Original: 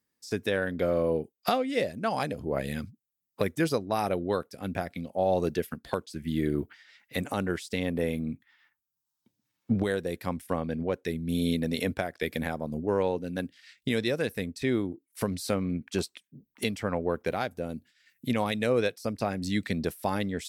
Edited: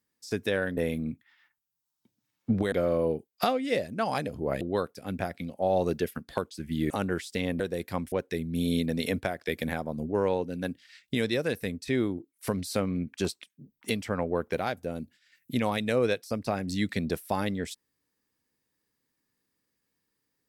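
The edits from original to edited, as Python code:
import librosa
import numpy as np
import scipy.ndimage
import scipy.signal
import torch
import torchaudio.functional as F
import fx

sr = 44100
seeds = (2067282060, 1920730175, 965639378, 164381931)

y = fx.edit(x, sr, fx.cut(start_s=2.66, length_s=1.51),
    fx.cut(start_s=6.46, length_s=0.82),
    fx.move(start_s=7.98, length_s=1.95, to_s=0.77),
    fx.cut(start_s=10.45, length_s=0.41), tone=tone)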